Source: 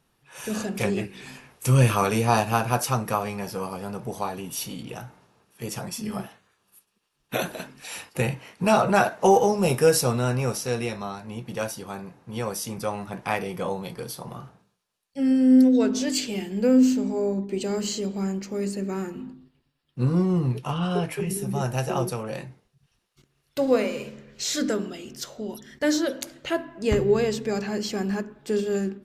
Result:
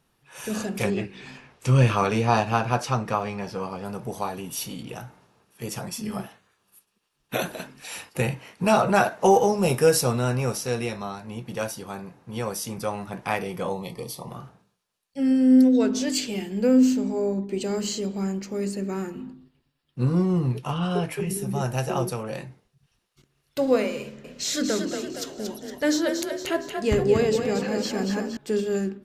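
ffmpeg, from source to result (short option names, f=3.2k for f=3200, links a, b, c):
-filter_complex "[0:a]asettb=1/sr,asplit=3[a][b][c];[a]atrim=end=0.904[d];[b]atrim=start=0.9:end=3.85,asetpts=PTS-STARTPTS,afade=t=in:d=0.004:c=qsin,afade=t=out:st=2.946:d=0.004:c=qsin,lowpass=5.3k[e];[c]atrim=start=3.846[f];[d][e]acrossfade=d=0.004:c1=hsin:c2=qsin[g];[g][f]acrossfade=d=0.004:c1=qsin:c2=hsin,asettb=1/sr,asplit=3[h][i][j];[h]atrim=end=13.734[k];[i]atrim=start=13.73:end=14.3,asetpts=PTS-STARTPTS,afade=t=in:d=0.004:c=qsin,afade=t=out:st=0.566:d=0.004:c=qsin,asuperstop=centerf=1500:order=12:qfactor=3[l];[j]atrim=start=14.296[m];[k][l]acrossfade=d=0.004:c1=hsin:c2=qsin[n];[n][m]acrossfade=d=0.004:c1=qsin:c2=hsin,asettb=1/sr,asplit=3[o][p][q];[o]atrim=end=24.014[r];[p]atrim=start=24.01:end=28.37,asetpts=PTS-STARTPTS,afade=t=in:d=0.004:c=qsin,afade=t=out:st=4.356:d=0.004:c=qsin,asplit=7[s][t][u][v][w][x][y];[t]adelay=232,afreqshift=32,volume=-6dB[z];[u]adelay=464,afreqshift=64,volume=-12.2dB[aa];[v]adelay=696,afreqshift=96,volume=-18.4dB[ab];[w]adelay=928,afreqshift=128,volume=-24.6dB[ac];[x]adelay=1160,afreqshift=160,volume=-30.8dB[ad];[y]adelay=1392,afreqshift=192,volume=-37dB[ae];[s][z][aa][ab][ac][ad][ae]amix=inputs=7:normalize=0,atrim=end_sample=192276[af];[q]atrim=start=28.366[ag];[r][af]acrossfade=d=0.004:c1=hsin:c2=qsin[ah];[ah][ag]acrossfade=d=0.004:c1=qsin:c2=hsin"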